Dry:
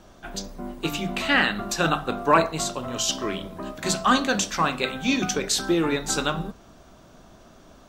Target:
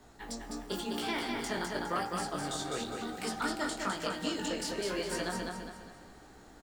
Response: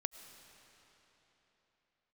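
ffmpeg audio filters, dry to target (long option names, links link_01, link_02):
-filter_complex "[0:a]asetrate=52479,aresample=44100,acrossover=split=110|1200|5200[link_01][link_02][link_03][link_04];[link_01]acompressor=threshold=-43dB:ratio=4[link_05];[link_02]acompressor=threshold=-27dB:ratio=4[link_06];[link_03]acompressor=threshold=-35dB:ratio=4[link_07];[link_04]acompressor=threshold=-40dB:ratio=4[link_08];[link_05][link_06][link_07][link_08]amix=inputs=4:normalize=0,flanger=delay=16.5:depth=6.8:speed=0.95,aecho=1:1:205|410|615|820|1025:0.631|0.252|0.101|0.0404|0.0162,asplit=2[link_09][link_10];[1:a]atrim=start_sample=2205,highshelf=frequency=9200:gain=9.5[link_11];[link_10][link_11]afir=irnorm=-1:irlink=0,volume=-2dB[link_12];[link_09][link_12]amix=inputs=2:normalize=0,volume=-8.5dB"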